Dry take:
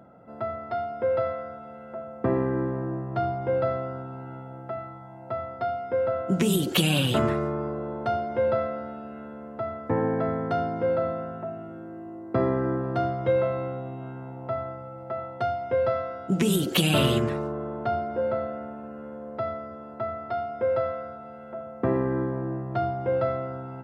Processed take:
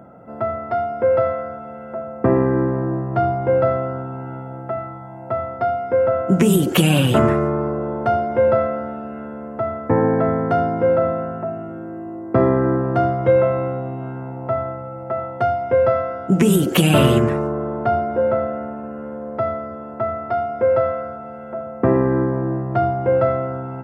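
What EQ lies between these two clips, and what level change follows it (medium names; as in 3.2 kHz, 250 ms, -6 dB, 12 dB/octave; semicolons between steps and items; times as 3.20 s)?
peaking EQ 4 kHz -11 dB 0.81 oct; treble shelf 8.2 kHz -3.5 dB; +8.5 dB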